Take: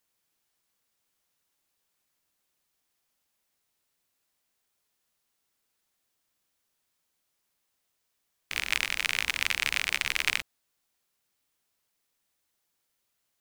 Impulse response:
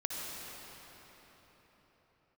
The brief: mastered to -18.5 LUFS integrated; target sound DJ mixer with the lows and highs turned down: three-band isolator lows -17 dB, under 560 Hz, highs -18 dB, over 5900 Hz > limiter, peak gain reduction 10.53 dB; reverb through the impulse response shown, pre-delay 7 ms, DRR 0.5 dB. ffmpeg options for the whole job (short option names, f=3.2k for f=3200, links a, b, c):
-filter_complex "[0:a]asplit=2[a][b];[1:a]atrim=start_sample=2205,adelay=7[c];[b][c]afir=irnorm=-1:irlink=0,volume=-4dB[d];[a][d]amix=inputs=2:normalize=0,acrossover=split=560 5900:gain=0.141 1 0.126[e][f][g];[e][f][g]amix=inputs=3:normalize=0,volume=14dB,alimiter=limit=-3.5dB:level=0:latency=1"